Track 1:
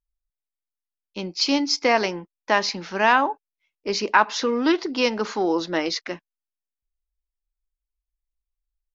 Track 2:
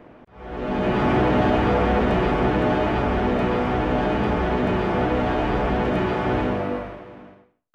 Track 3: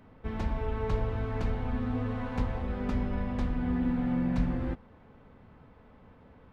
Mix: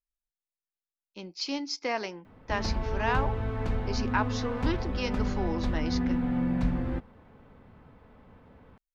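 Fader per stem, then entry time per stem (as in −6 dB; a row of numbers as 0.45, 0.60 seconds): −11.5 dB, muted, +1.0 dB; 0.00 s, muted, 2.25 s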